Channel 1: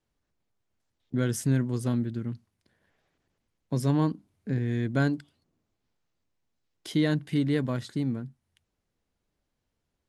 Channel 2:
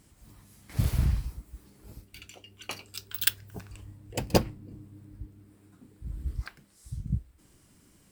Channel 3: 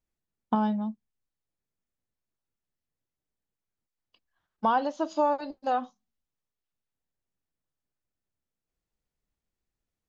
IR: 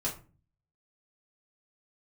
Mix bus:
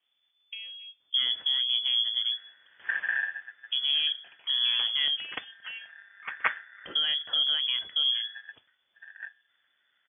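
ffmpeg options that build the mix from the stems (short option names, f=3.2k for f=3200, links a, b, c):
-filter_complex "[0:a]alimiter=limit=-21.5dB:level=0:latency=1:release=131,volume=3dB,asplit=2[a][b];[b]volume=-21dB[c];[1:a]aeval=exprs='val(0)*sgn(sin(2*PI*1800*n/s))':c=same,adelay=2100,volume=-4.5dB,afade=t=out:st=7.03:d=0.22:silence=0.375837,asplit=2[d][e];[e]volume=-20.5dB[f];[2:a]acompressor=threshold=-46dB:ratio=1.5,volume=-9dB,asplit=2[g][h];[h]volume=-13.5dB[i];[3:a]atrim=start_sample=2205[j];[c][f][i]amix=inputs=3:normalize=0[k];[k][j]afir=irnorm=-1:irlink=0[l];[a][d][g][l]amix=inputs=4:normalize=0,lowpass=f=3k:t=q:w=0.5098,lowpass=f=3k:t=q:w=0.6013,lowpass=f=3k:t=q:w=0.9,lowpass=f=3k:t=q:w=2.563,afreqshift=-3500,highpass=65"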